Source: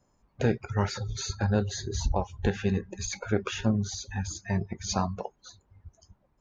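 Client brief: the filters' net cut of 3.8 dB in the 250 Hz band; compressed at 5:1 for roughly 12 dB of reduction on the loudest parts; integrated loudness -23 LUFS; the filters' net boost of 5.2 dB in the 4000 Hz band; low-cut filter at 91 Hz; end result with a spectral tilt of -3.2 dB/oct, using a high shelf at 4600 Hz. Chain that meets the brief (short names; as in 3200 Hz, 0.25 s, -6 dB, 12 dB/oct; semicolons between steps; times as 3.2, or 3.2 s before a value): HPF 91 Hz; bell 250 Hz -5 dB; bell 4000 Hz +3.5 dB; high shelf 4600 Hz +5 dB; compressor 5:1, threshold -36 dBFS; gain +16.5 dB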